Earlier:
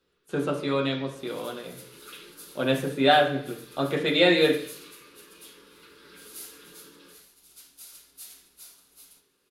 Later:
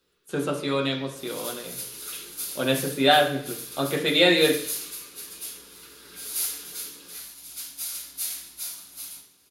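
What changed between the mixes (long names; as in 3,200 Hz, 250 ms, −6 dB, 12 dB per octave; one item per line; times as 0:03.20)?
second sound: send +11.5 dB
master: add high-shelf EQ 4,700 Hz +10.5 dB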